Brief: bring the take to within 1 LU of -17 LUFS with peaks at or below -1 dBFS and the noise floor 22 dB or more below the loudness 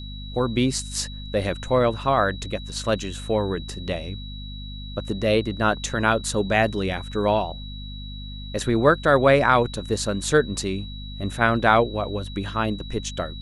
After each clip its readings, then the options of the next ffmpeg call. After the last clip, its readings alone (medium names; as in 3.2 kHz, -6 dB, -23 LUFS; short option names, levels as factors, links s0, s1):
hum 50 Hz; highest harmonic 250 Hz; hum level -33 dBFS; steady tone 3.9 kHz; tone level -40 dBFS; loudness -23.0 LUFS; peak level -2.0 dBFS; loudness target -17.0 LUFS
-> -af "bandreject=f=50:t=h:w=4,bandreject=f=100:t=h:w=4,bandreject=f=150:t=h:w=4,bandreject=f=200:t=h:w=4,bandreject=f=250:t=h:w=4"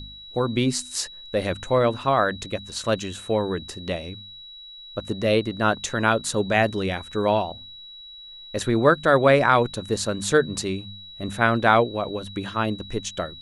hum not found; steady tone 3.9 kHz; tone level -40 dBFS
-> -af "bandreject=f=3900:w=30"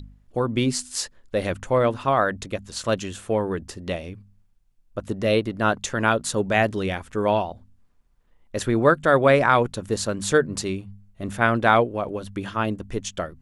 steady tone not found; loudness -23.5 LUFS; peak level -2.5 dBFS; loudness target -17.0 LUFS
-> -af "volume=2.11,alimiter=limit=0.891:level=0:latency=1"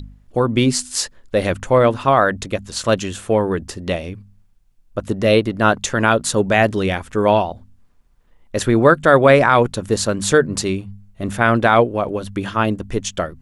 loudness -17.5 LUFS; peak level -1.0 dBFS; noise floor -54 dBFS